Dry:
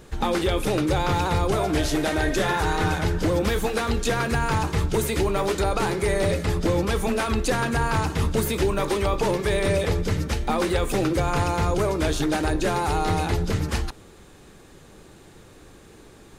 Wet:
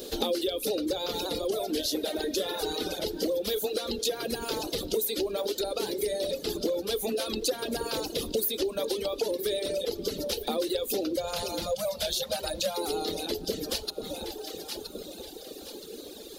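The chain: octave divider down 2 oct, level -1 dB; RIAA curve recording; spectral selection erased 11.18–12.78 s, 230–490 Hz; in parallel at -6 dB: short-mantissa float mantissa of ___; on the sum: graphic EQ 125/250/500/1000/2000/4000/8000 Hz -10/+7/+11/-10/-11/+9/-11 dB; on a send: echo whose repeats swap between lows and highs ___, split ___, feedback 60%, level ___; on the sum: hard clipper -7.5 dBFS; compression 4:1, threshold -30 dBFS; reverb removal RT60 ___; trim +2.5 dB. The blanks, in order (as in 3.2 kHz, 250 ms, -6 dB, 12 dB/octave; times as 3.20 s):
4-bit, 485 ms, 860 Hz, -10.5 dB, 1.9 s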